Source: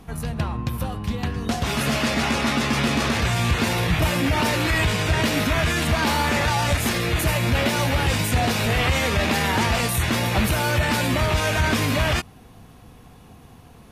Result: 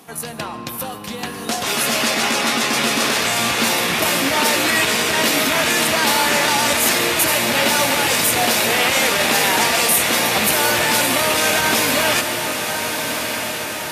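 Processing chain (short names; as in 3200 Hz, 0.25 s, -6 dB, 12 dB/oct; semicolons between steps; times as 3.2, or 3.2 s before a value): HPF 300 Hz 12 dB/oct; high shelf 5000 Hz +10 dB; diffused feedback echo 1.286 s, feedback 62%, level -6.5 dB; reverb RT60 2.6 s, pre-delay 0.1 s, DRR 12.5 dB; gain +3.5 dB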